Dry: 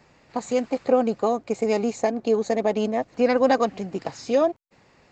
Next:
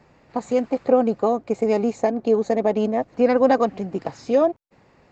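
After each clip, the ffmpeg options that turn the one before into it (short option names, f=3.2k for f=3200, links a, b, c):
-af "highshelf=f=2.1k:g=-9.5,volume=3dB"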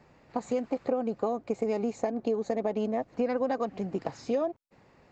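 -af "acompressor=threshold=-21dB:ratio=6,volume=-4dB"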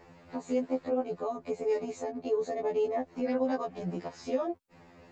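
-af "alimiter=level_in=1dB:limit=-24dB:level=0:latency=1:release=411,volume=-1dB,afftfilt=real='re*2*eq(mod(b,4),0)':imag='im*2*eq(mod(b,4),0)':win_size=2048:overlap=0.75,volume=6.5dB"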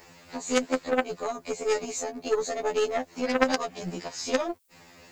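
-af "aeval=exprs='0.133*(cos(1*acos(clip(val(0)/0.133,-1,1)))-cos(1*PI/2))+0.0596*(cos(2*acos(clip(val(0)/0.133,-1,1)))-cos(2*PI/2))+0.0237*(cos(3*acos(clip(val(0)/0.133,-1,1)))-cos(3*PI/2))+0.0335*(cos(4*acos(clip(val(0)/0.133,-1,1)))-cos(4*PI/2))+0.00596*(cos(6*acos(clip(val(0)/0.133,-1,1)))-cos(6*PI/2))':c=same,crystalizer=i=8.5:c=0,volume=5.5dB"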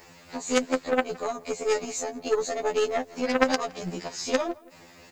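-filter_complex "[0:a]asplit=2[a][b];[b]adelay=166,lowpass=f=2.6k:p=1,volume=-22dB,asplit=2[c][d];[d]adelay=166,lowpass=f=2.6k:p=1,volume=0.39,asplit=2[e][f];[f]adelay=166,lowpass=f=2.6k:p=1,volume=0.39[g];[a][c][e][g]amix=inputs=4:normalize=0,volume=1dB"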